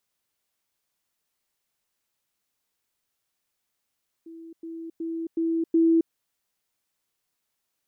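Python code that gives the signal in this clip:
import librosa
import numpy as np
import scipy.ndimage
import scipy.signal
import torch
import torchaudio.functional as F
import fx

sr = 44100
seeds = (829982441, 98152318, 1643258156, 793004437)

y = fx.level_ladder(sr, hz=329.0, from_db=-40.0, step_db=6.0, steps=5, dwell_s=0.27, gap_s=0.1)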